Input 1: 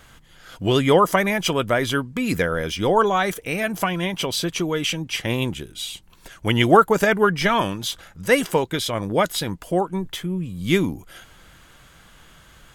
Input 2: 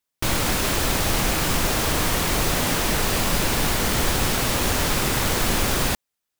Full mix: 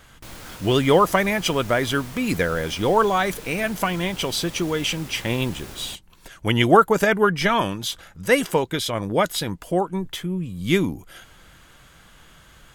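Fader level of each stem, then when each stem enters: −0.5, −18.0 decibels; 0.00, 0.00 seconds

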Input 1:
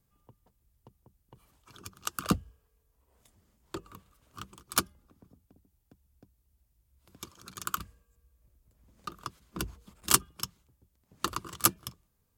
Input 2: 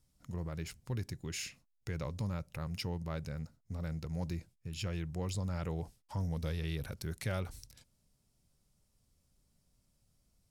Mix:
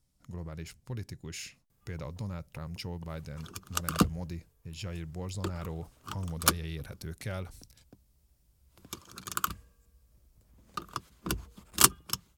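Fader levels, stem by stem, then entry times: +2.5, −1.0 decibels; 1.70, 0.00 seconds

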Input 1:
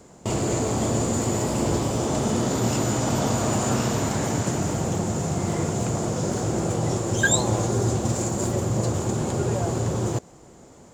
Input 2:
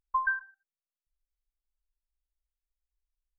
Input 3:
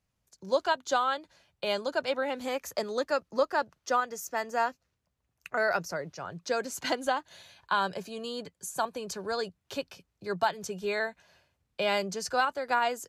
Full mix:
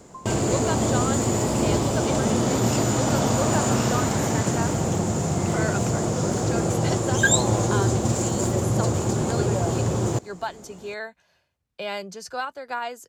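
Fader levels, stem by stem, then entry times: +1.5, −13.0, −3.0 decibels; 0.00, 0.00, 0.00 seconds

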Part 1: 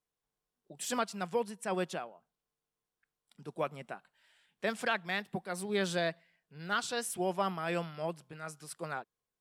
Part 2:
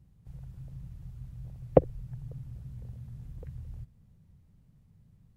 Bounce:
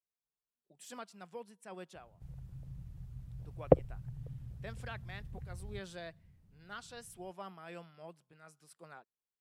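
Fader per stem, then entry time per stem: −14.0, −3.5 decibels; 0.00, 1.95 seconds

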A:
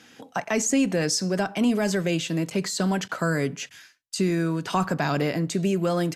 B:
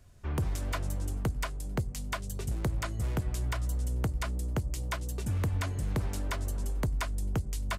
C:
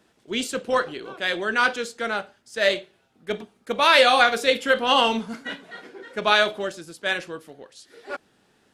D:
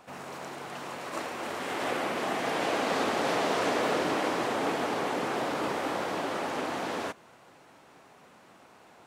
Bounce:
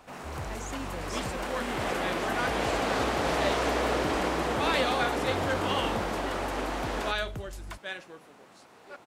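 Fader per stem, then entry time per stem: −18.5, −8.0, −13.0, 0.0 decibels; 0.00, 0.00, 0.80, 0.00 seconds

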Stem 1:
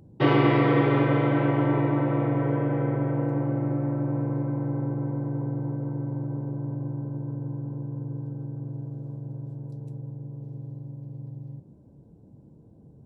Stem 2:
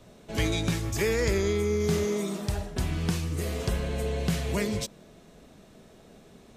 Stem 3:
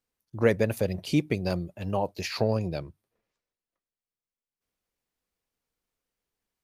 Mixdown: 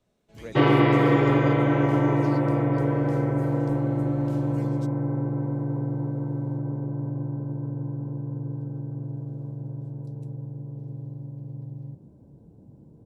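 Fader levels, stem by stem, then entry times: +1.5, −20.0, −18.5 decibels; 0.35, 0.00, 0.00 seconds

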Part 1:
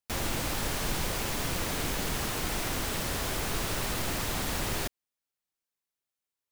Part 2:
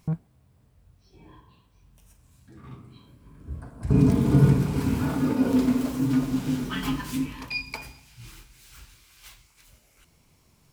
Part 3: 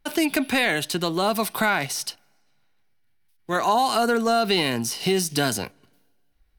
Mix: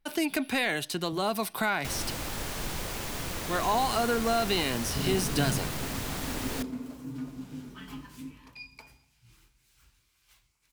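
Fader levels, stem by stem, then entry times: −3.5, −14.5, −6.5 decibels; 1.75, 1.05, 0.00 seconds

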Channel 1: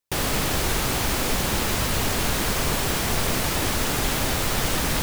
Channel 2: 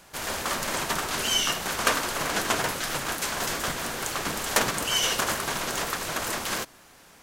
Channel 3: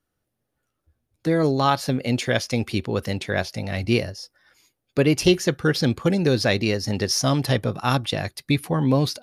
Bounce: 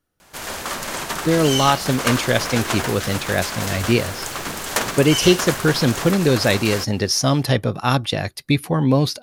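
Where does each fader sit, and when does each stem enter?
−17.5, +1.5, +3.0 decibels; 1.10, 0.20, 0.00 seconds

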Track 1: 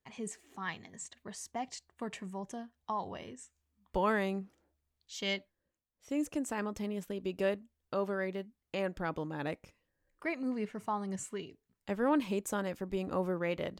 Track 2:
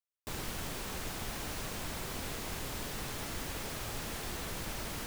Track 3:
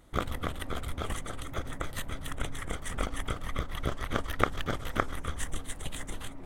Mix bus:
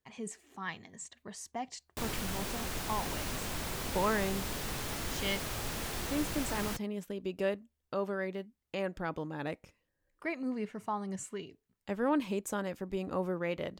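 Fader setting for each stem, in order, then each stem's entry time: −0.5 dB, +2.0 dB, muted; 0.00 s, 1.70 s, muted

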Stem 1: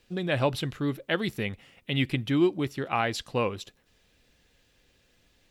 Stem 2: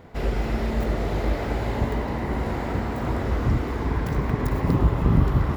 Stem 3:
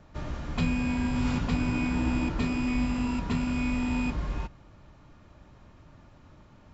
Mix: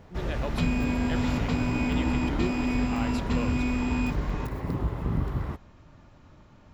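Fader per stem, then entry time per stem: −10.0, −9.0, +0.5 decibels; 0.00, 0.00, 0.00 seconds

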